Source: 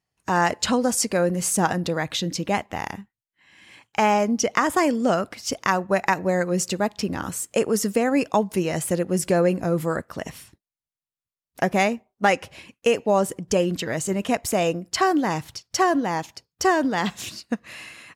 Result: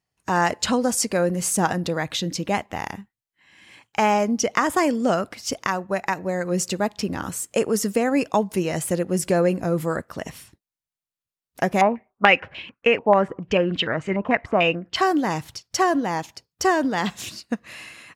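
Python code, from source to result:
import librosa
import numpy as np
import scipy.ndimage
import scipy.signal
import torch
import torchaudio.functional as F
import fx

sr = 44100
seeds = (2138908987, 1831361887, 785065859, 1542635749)

y = fx.filter_held_lowpass(x, sr, hz=6.8, low_hz=1000.0, high_hz=3100.0, at=(11.81, 14.96))
y = fx.edit(y, sr, fx.clip_gain(start_s=5.67, length_s=0.78, db=-3.5), tone=tone)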